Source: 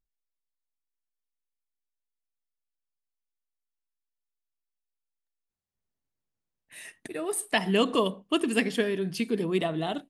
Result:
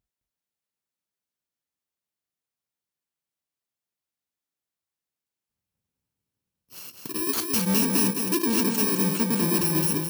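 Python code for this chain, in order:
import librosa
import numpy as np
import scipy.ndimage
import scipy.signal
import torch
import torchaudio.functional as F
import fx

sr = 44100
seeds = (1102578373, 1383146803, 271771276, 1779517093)

p1 = fx.bit_reversed(x, sr, seeds[0], block=64)
p2 = fx.low_shelf(p1, sr, hz=390.0, db=7.0)
p3 = np.clip(p2, -10.0 ** (-23.5 / 20.0), 10.0 ** (-23.5 / 20.0))
p4 = scipy.signal.sosfilt(scipy.signal.butter(2, 77.0, 'highpass', fs=sr, output='sos'), p3)
p5 = p4 + fx.echo_single(p4, sr, ms=213, db=-4.5, dry=0)
y = F.gain(torch.from_numpy(p5), 3.5).numpy()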